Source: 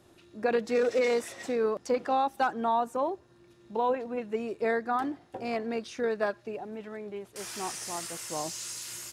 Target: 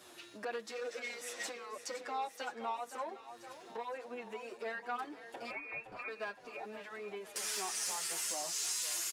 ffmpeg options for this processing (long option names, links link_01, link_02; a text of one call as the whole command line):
ffmpeg -i in.wav -filter_complex "[0:a]acompressor=threshold=-45dB:ratio=3,asoftclip=type=tanh:threshold=-35.5dB,highpass=frequency=1300:poles=1,asettb=1/sr,asplit=3[link_01][link_02][link_03];[link_01]atrim=end=5.504[link_04];[link_02]atrim=start=5.5:end=6.08,asetpts=PTS-STARTPTS,afade=type=in:duration=0.004:curve=qsin,afade=type=out:start_time=0.576:duration=0.004:curve=qsin,lowpass=frequency=2500:width_type=q:width=0.5098,lowpass=frequency=2500:width_type=q:width=0.6013,lowpass=frequency=2500:width_type=q:width=0.9,lowpass=frequency=2500:width_type=q:width=2.563,afreqshift=-2900[link_05];[link_03]atrim=start=6.076[link_06];[link_04][link_05]acrossfade=duration=0.004:curve1=hsin:curve2=qsin[link_07];[link_07][link_06]acrossfade=duration=0.004:curve1=qsin:curve2=hsin,aecho=1:1:515|1030|1545|2060|2575|3090:0.251|0.141|0.0788|0.0441|0.0247|0.0138,asplit=2[link_08][link_09];[link_09]adelay=7.6,afreqshift=-2.5[link_10];[link_08][link_10]amix=inputs=2:normalize=1,volume=13dB" out.wav